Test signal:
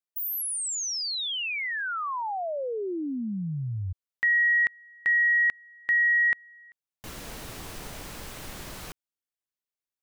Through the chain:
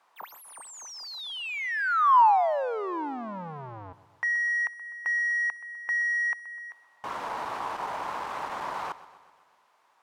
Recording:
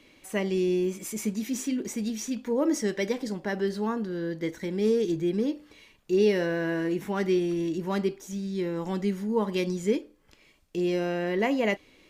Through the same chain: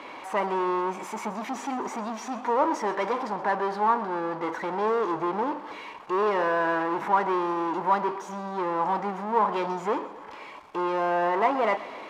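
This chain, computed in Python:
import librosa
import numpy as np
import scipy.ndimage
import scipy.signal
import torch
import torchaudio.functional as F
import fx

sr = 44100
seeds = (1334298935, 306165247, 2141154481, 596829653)

y = fx.power_curve(x, sr, exponent=0.5)
y = fx.bandpass_q(y, sr, hz=960.0, q=3.4)
y = fx.echo_feedback(y, sr, ms=126, feedback_pct=60, wet_db=-17)
y = F.gain(torch.from_numpy(y), 9.0).numpy()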